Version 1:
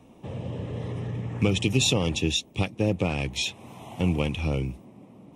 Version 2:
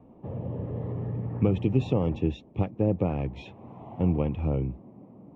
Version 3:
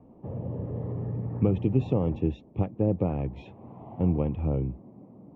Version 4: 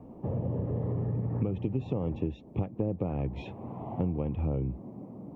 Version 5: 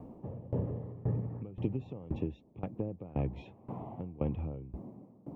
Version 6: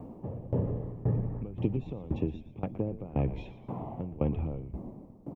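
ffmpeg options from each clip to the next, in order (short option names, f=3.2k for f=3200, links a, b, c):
-af "lowpass=1k"
-af "highshelf=f=2k:g=-10.5"
-af "acompressor=threshold=-33dB:ratio=6,volume=5.5dB"
-af "aeval=exprs='val(0)*pow(10,-21*if(lt(mod(1.9*n/s,1),2*abs(1.9)/1000),1-mod(1.9*n/s,1)/(2*abs(1.9)/1000),(mod(1.9*n/s,1)-2*abs(1.9)/1000)/(1-2*abs(1.9)/1000))/20)':c=same,volume=2dB"
-filter_complex "[0:a]asplit=5[a][b][c][d][e];[b]adelay=118,afreqshift=-89,volume=-13dB[f];[c]adelay=236,afreqshift=-178,volume=-19.9dB[g];[d]adelay=354,afreqshift=-267,volume=-26.9dB[h];[e]adelay=472,afreqshift=-356,volume=-33.8dB[i];[a][f][g][h][i]amix=inputs=5:normalize=0,volume=4dB"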